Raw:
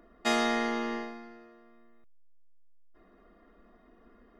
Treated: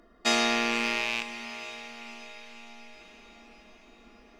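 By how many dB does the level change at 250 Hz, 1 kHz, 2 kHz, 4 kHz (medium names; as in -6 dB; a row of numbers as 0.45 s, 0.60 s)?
0.0 dB, +1.5 dB, +7.0 dB, +8.5 dB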